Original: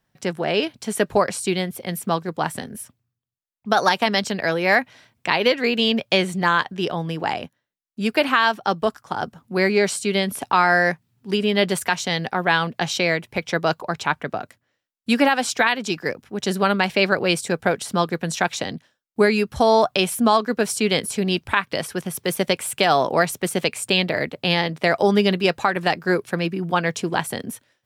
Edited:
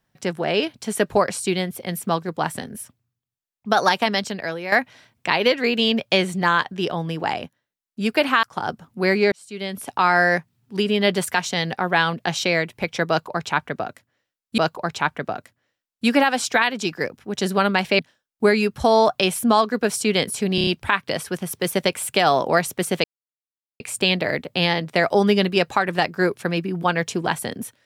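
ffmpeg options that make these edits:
-filter_complex "[0:a]asplit=11[a][b][c][d][e][f][g][h][i][j][k];[a]atrim=end=4.72,asetpts=PTS-STARTPTS,afade=t=out:st=3.98:d=0.74:silence=0.281838[l];[b]atrim=start=4.72:end=8.432,asetpts=PTS-STARTPTS,afade=t=in:d=0.004:c=hsin:silence=0.281838[m];[c]atrim=start=8.968:end=9.86,asetpts=PTS-STARTPTS,afade=t=out:st=0.888:d=0.004:c=hsin[n];[d]atrim=start=9.86:end=15.122,asetpts=PTS-STARTPTS,afade=t=in:d=0.82[o];[e]atrim=start=13.628:end=17.042[p];[f]atrim=start=18.748:end=21.342[q];[g]atrim=start=21.308:end=21.342[r];[h]atrim=start=21.308:end=21.342[s];[i]atrim=start=21.308:end=21.342[t];[j]atrim=start=21.308:end=23.68,asetpts=PTS-STARTPTS,afade=t=out:st=2.368:d=0.004:c=hsin,apad=pad_dur=0.76[u];[k]atrim=start=23.68,asetpts=PTS-STARTPTS,afade=t=in:d=0.004:c=hsin[v];[l][m]concat=n=2:v=0:a=1[w];[n][o]concat=n=2:v=0:a=1[x];[w][x]acrossfade=d=0.004:c1=hsin:c2=hsin[y];[y][p]acrossfade=d=0.004:c1=hsin:c2=hsin[z];[z][q]acrossfade=d=0.004:c1=hsin:c2=hsin[aa];[aa][r]acrossfade=d=0.004:c1=hsin:c2=hsin[ab];[ab][s]acrossfade=d=0.004:c1=hsin:c2=hsin[ac];[ac][t]acrossfade=d=0.004:c1=hsin:c2=hsin[ad];[u][v]concat=n=2:v=0:a=1[ae];[ad][ae]acrossfade=d=0.004:c1=hsin:c2=hsin"

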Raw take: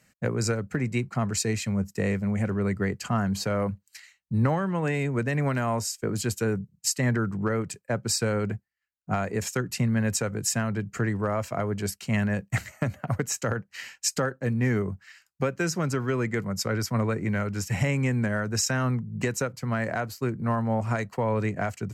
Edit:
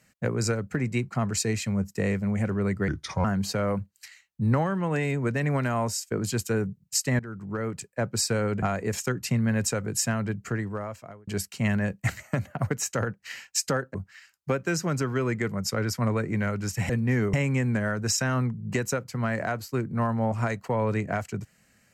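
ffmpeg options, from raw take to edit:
-filter_complex "[0:a]asplit=9[a][b][c][d][e][f][g][h][i];[a]atrim=end=2.884[j];[b]atrim=start=2.88:end=3.16,asetpts=PTS-STARTPTS,asetrate=33957,aresample=44100,atrim=end_sample=16036,asetpts=PTS-STARTPTS[k];[c]atrim=start=3.156:end=7.11,asetpts=PTS-STARTPTS,afade=t=out:st=3.95:d=0.004:c=hsin:silence=0.141254[l];[d]atrim=start=7.11:end=8.542,asetpts=PTS-STARTPTS,afade=t=in:d=0.71:silence=0.141254[m];[e]atrim=start=9.108:end=11.76,asetpts=PTS-STARTPTS,afade=t=out:st=1.682:d=0.97[n];[f]atrim=start=11.76:end=14.432,asetpts=PTS-STARTPTS,afade=t=in:d=0.004:c=hsin[o];[g]atrim=start=14.868:end=17.822[p];[h]atrim=start=14.428:end=14.872[q];[i]atrim=start=17.818[r];[j][k]acrossfade=d=0.004:c1=hsin:c2=hsin[s];[l][m]concat=n=2:v=0:a=1[t];[s][t]acrossfade=d=0.004:c1=hsin:c2=hsin[u];[n][o]concat=n=2:v=0:a=1[v];[u][v]acrossfade=d=0.004:c1=hsin:c2=hsin[w];[w][p]acrossfade=d=0.004:c1=hsin:c2=hsin[x];[x][q]acrossfade=d=0.004:c1=hsin:c2=hsin[y];[y][r]acrossfade=d=0.004:c1=hsin:c2=hsin"

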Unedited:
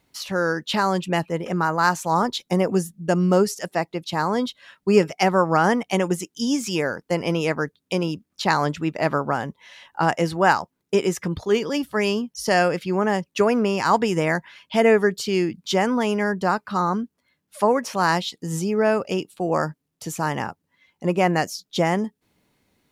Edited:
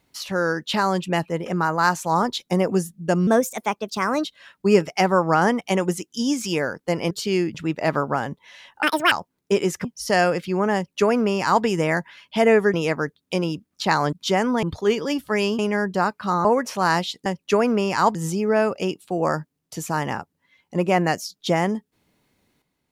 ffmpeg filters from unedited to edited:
-filter_complex "[0:a]asplit=15[a][b][c][d][e][f][g][h][i][j][k][l][m][n][o];[a]atrim=end=3.274[p];[b]atrim=start=3.27:end=4.47,asetpts=PTS-STARTPTS,asetrate=54243,aresample=44100,atrim=end_sample=43024,asetpts=PTS-STARTPTS[q];[c]atrim=start=4.466:end=7.332[r];[d]atrim=start=15.118:end=15.562[s];[e]atrim=start=8.718:end=10.004[t];[f]atrim=start=10:end=10.54,asetpts=PTS-STARTPTS,asetrate=81585,aresample=44100,atrim=end_sample=12872,asetpts=PTS-STARTPTS[u];[g]atrim=start=10.536:end=11.272[v];[h]atrim=start=12.228:end=15.122[w];[i]atrim=start=7.328:end=8.722[x];[j]atrim=start=15.558:end=16.062[y];[k]atrim=start=11.268:end=12.232[z];[l]atrim=start=16.058:end=16.922[aa];[m]atrim=start=17.628:end=18.442[ab];[n]atrim=start=13.128:end=14.022[ac];[o]atrim=start=18.438[ad];[p][q]acrossfade=d=0.004:c1=hsin:c2=hsin[ae];[ae][r]acrossfade=d=0.004:c1=hsin:c2=hsin[af];[af][s]acrossfade=d=0.004:c1=hsin:c2=hsin[ag];[ag][t]acrossfade=d=0.004:c1=hsin:c2=hsin[ah];[ah][u]acrossfade=d=0.004:c1=hsin:c2=hsin[ai];[ai][v]acrossfade=d=0.004:c1=hsin:c2=hsin[aj];[aj][w]acrossfade=d=0.004:c1=hsin:c2=hsin[ak];[ak][x]acrossfade=d=0.004:c1=hsin:c2=hsin[al];[al][y]acrossfade=d=0.004:c1=hsin:c2=hsin[am];[am][z]acrossfade=d=0.004:c1=hsin:c2=hsin[an];[an][aa]acrossfade=d=0.004:c1=hsin:c2=hsin[ao];[ao][ab]acrossfade=d=0.004:c1=hsin:c2=hsin[ap];[ap][ac]acrossfade=d=0.004:c1=hsin:c2=hsin[aq];[aq][ad]acrossfade=d=0.004:c1=hsin:c2=hsin"

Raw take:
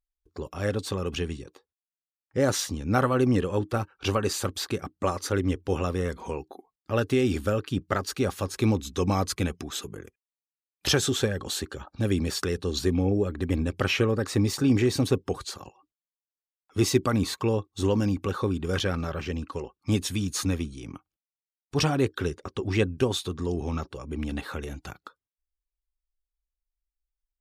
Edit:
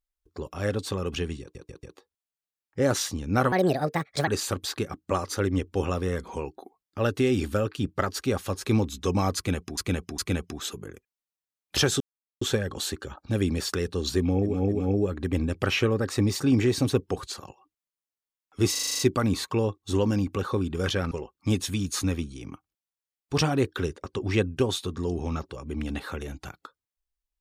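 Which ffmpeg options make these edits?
-filter_complex "[0:a]asplit=19[a][b][c][d][e][f][g][h][i][j][k][l][m][n][o][p][q][r][s];[a]atrim=end=1.552[t];[b]atrim=start=1.408:end=1.552[u];[c]atrim=start=1.408:end=1.552[v];[d]atrim=start=1.408:end=3.104[w];[e]atrim=start=3.1:end=4.2,asetpts=PTS-STARTPTS,asetrate=64386,aresample=44100,atrim=end_sample=33226,asetpts=PTS-STARTPTS[x];[f]atrim=start=4.196:end=9.702[y];[g]atrim=start=9.288:end=9.702[z];[h]atrim=start=9.288:end=11.11,asetpts=PTS-STARTPTS,afade=t=out:st=1.818:d=0.004:c=hsin,apad=pad_dur=0.41[aa];[i]atrim=start=11.11:end=13.35,asetpts=PTS-STARTPTS,afade=t=in:d=0.004:c=hsin[ab];[j]atrim=start=12.85:end=13.35[ac];[k]atrim=start=12.85:end=16.932[ad];[l]atrim=start=16.888:end=16.932[ae];[m]atrim=start=16.888:end=16.932[af];[n]atrim=start=16.888:end=16.932[ag];[o]atrim=start=16.888:end=16.932[ah];[p]atrim=start=16.888:end=16.932[ai];[q]atrim=start=16.888:end=16.932[aj];[r]atrim=start=16.888:end=19.012[ak];[s]atrim=start=19.528[al];[t][u]acrossfade=d=0.004:c1=hsin:c2=hsin[am];[am][v]acrossfade=d=0.004:c1=hsin:c2=hsin[an];[an][w]acrossfade=d=0.004:c1=hsin:c2=hsin[ao];[ao][x]acrossfade=d=0.004:c1=hsin:c2=hsin[ap];[ap][y]acrossfade=d=0.004:c1=hsin:c2=hsin[aq];[aq][z]acrossfade=d=0.004:c1=hsin:c2=hsin[ar];[aa][ab]concat=n=2:v=0:a=1[as];[ar][as]acrossfade=d=0.004:c1=hsin:c2=hsin[at];[at][ac]acrossfade=d=0.24:c1=tri:c2=tri[au];[au][ad]acrossfade=d=0.24:c1=tri:c2=tri[av];[av][ae]acrossfade=d=0.004:c1=hsin:c2=hsin[aw];[aw][af]acrossfade=d=0.004:c1=hsin:c2=hsin[ax];[ax][ag]acrossfade=d=0.004:c1=hsin:c2=hsin[ay];[ay][ah]acrossfade=d=0.004:c1=hsin:c2=hsin[az];[az][ai]acrossfade=d=0.004:c1=hsin:c2=hsin[ba];[ba][aj]acrossfade=d=0.004:c1=hsin:c2=hsin[bb];[bb][ak]acrossfade=d=0.004:c1=hsin:c2=hsin[bc];[bc][al]acrossfade=d=0.004:c1=hsin:c2=hsin"

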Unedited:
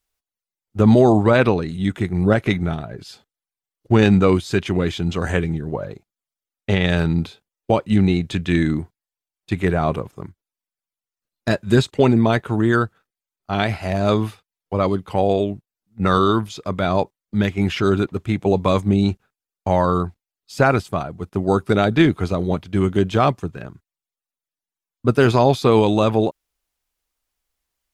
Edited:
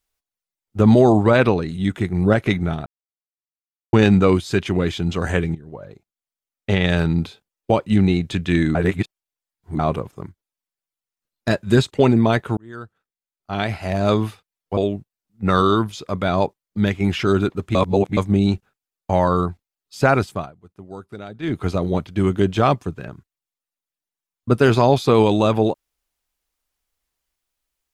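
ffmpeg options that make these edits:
-filter_complex "[0:a]asplit=12[a][b][c][d][e][f][g][h][i][j][k][l];[a]atrim=end=2.86,asetpts=PTS-STARTPTS,afade=t=out:st=2.856:d=0.004:c=hsin[m];[b]atrim=start=2.86:end=3.93,asetpts=PTS-STARTPTS,volume=0[n];[c]atrim=start=3.93:end=5.55,asetpts=PTS-STARTPTS,afade=t=in:d=0.004:c=hsin,afade=t=out:st=1.616:d=0.004:c=hsin:silence=0.16788[o];[d]atrim=start=5.55:end=8.752,asetpts=PTS-STARTPTS,afade=t=in:d=1.23:silence=0.16788[p];[e]atrim=start=8.748:end=9.792,asetpts=PTS-STARTPTS,areverse[q];[f]atrim=start=9.788:end=12.57,asetpts=PTS-STARTPTS,afade=t=out:st=2.778:d=0.004:c=hsin[r];[g]atrim=start=12.57:end=14.772,asetpts=PTS-STARTPTS,afade=t=in:d=1.45[s];[h]atrim=start=15.338:end=18.322[t];[i]atrim=start=18.318:end=18.742,asetpts=PTS-STARTPTS,areverse[u];[j]atrim=start=18.738:end=21.1,asetpts=PTS-STARTPTS,afade=t=out:st=2.142:d=0.22:silence=0.125893[v];[k]atrim=start=21.1:end=21.99,asetpts=PTS-STARTPTS,volume=-18dB[w];[l]atrim=start=21.99,asetpts=PTS-STARTPTS,afade=t=in:d=0.22:silence=0.125893[x];[m][n][o][p]concat=n=4:v=0:a=1[y];[y][q]acrossfade=d=0.004:c1=hsin:c2=hsin[z];[r][s]concat=n=2:v=0:a=1[aa];[z][aa]acrossfade=d=0.004:c1=hsin:c2=hsin[ab];[ab][t]acrossfade=d=0.004:c1=hsin:c2=hsin[ac];[ac][u]acrossfade=d=0.004:c1=hsin:c2=hsin[ad];[v][w][x]concat=n=3:v=0:a=1[ae];[ad][ae]acrossfade=d=0.004:c1=hsin:c2=hsin"

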